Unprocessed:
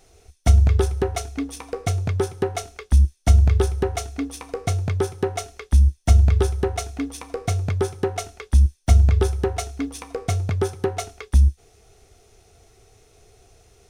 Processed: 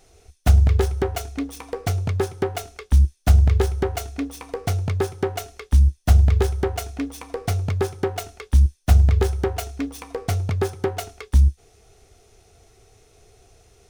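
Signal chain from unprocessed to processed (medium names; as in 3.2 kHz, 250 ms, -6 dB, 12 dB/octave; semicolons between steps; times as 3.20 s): self-modulated delay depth 0.45 ms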